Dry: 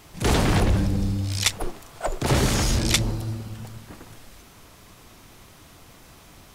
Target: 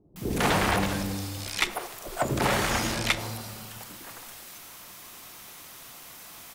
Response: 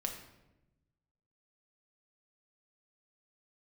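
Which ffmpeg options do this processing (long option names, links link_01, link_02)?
-filter_complex "[0:a]aemphasis=mode=production:type=riaa,acrossover=split=2700[link_01][link_02];[link_02]acompressor=threshold=-28dB:ratio=4:attack=1:release=60[link_03];[link_01][link_03]amix=inputs=2:normalize=0,highshelf=frequency=4500:gain=-11,acrossover=split=410[link_04][link_05];[link_05]adelay=160[link_06];[link_04][link_06]amix=inputs=2:normalize=0,asplit=2[link_07][link_08];[1:a]atrim=start_sample=2205[link_09];[link_08][link_09]afir=irnorm=-1:irlink=0,volume=-7.5dB[link_10];[link_07][link_10]amix=inputs=2:normalize=0"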